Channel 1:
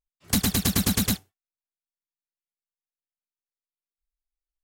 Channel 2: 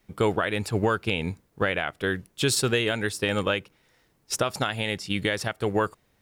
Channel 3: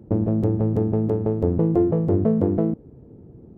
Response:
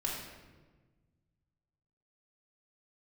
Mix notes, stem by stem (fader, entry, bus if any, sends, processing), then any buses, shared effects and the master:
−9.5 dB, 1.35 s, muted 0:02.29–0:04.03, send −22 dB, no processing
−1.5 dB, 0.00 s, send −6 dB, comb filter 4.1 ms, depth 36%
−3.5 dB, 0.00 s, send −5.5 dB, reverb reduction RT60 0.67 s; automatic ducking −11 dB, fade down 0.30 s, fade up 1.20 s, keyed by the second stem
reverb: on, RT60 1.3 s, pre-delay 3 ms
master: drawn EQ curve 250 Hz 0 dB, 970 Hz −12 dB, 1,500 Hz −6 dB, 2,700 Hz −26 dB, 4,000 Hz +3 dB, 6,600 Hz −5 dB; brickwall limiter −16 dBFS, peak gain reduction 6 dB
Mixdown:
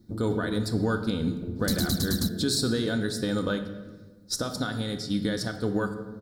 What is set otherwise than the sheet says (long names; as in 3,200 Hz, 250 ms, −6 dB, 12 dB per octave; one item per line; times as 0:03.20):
stem 1 −9.5 dB → +1.5 dB
stem 3 −3.5 dB → −14.0 dB